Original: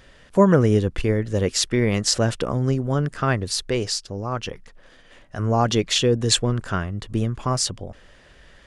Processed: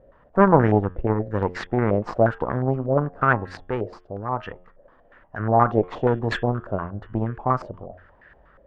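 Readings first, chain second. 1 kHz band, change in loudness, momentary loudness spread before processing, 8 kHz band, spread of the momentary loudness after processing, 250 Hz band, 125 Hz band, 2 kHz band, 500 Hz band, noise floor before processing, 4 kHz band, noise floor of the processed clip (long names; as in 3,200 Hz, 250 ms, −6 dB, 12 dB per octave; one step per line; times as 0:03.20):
+5.0 dB, −1.0 dB, 10 LU, below −30 dB, 12 LU, −1.5 dB, −2.5 dB, +2.0 dB, +0.5 dB, −51 dBFS, −19.5 dB, −56 dBFS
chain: hum removal 89.64 Hz, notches 39
harmonic generator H 4 −13 dB, 5 −28 dB, 7 −26 dB, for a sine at −1.5 dBFS
low-pass on a step sequencer 8.4 Hz 590–1,700 Hz
level −3.5 dB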